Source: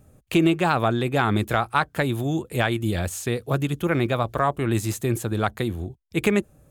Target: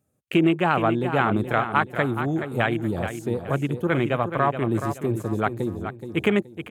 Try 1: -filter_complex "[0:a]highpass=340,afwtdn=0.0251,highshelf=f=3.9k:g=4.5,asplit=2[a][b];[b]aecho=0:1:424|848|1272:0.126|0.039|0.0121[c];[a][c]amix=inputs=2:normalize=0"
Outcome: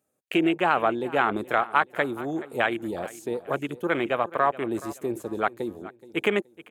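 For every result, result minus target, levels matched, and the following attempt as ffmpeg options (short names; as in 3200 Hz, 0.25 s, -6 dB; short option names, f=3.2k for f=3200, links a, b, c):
125 Hz band -12.0 dB; echo-to-direct -9 dB
-filter_complex "[0:a]highpass=120,afwtdn=0.0251,highshelf=f=3.9k:g=4.5,asplit=2[a][b];[b]aecho=0:1:424|848|1272:0.126|0.039|0.0121[c];[a][c]amix=inputs=2:normalize=0"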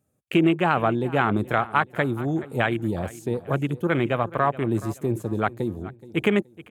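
echo-to-direct -9 dB
-filter_complex "[0:a]highpass=120,afwtdn=0.0251,highshelf=f=3.9k:g=4.5,asplit=2[a][b];[b]aecho=0:1:424|848|1272|1696:0.355|0.11|0.0341|0.0106[c];[a][c]amix=inputs=2:normalize=0"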